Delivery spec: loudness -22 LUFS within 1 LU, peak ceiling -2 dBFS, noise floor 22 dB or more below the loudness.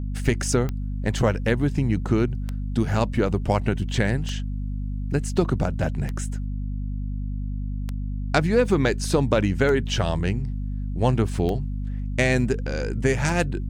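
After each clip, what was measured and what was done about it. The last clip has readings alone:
clicks 8; hum 50 Hz; harmonics up to 250 Hz; hum level -26 dBFS; loudness -24.5 LUFS; peak -5.0 dBFS; loudness target -22.0 LUFS
-> de-click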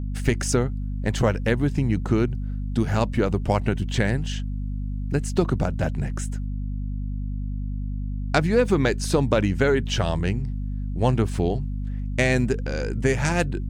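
clicks 0; hum 50 Hz; harmonics up to 250 Hz; hum level -26 dBFS
-> de-hum 50 Hz, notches 5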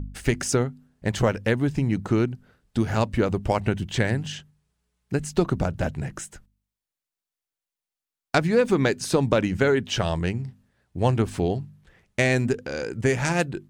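hum none; loudness -25.0 LUFS; peak -5.5 dBFS; loudness target -22.0 LUFS
-> gain +3 dB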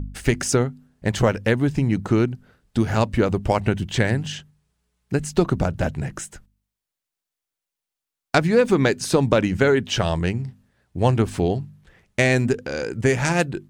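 loudness -22.0 LUFS; peak -2.5 dBFS; noise floor -86 dBFS

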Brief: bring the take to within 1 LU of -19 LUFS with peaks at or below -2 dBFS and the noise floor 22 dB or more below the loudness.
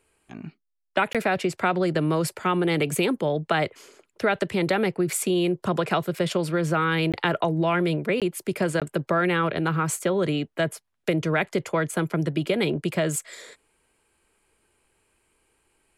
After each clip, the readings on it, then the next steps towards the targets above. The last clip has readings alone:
dropouts 4; longest dropout 17 ms; loudness -25.0 LUFS; peak -8.5 dBFS; loudness target -19.0 LUFS
-> interpolate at 1.13/7.12/8.2/8.8, 17 ms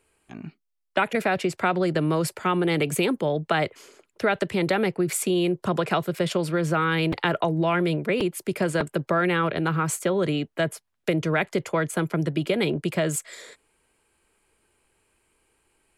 dropouts 0; loudness -25.0 LUFS; peak -8.5 dBFS; loudness target -19.0 LUFS
-> gain +6 dB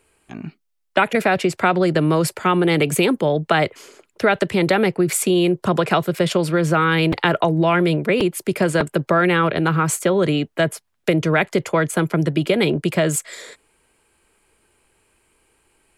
loudness -19.0 LUFS; peak -2.5 dBFS; noise floor -69 dBFS

